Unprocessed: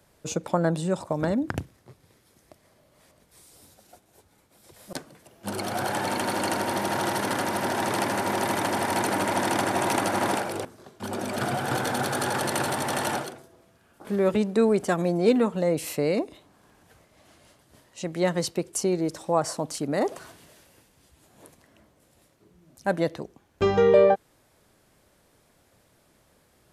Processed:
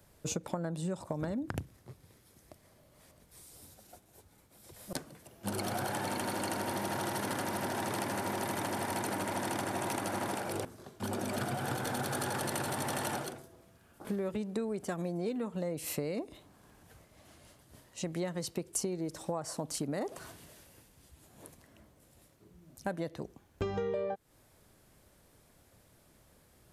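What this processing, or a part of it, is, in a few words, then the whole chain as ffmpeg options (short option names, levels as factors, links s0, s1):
ASMR close-microphone chain: -af "lowshelf=f=160:g=7,acompressor=threshold=0.0398:ratio=10,highshelf=f=9800:g=7,volume=0.668"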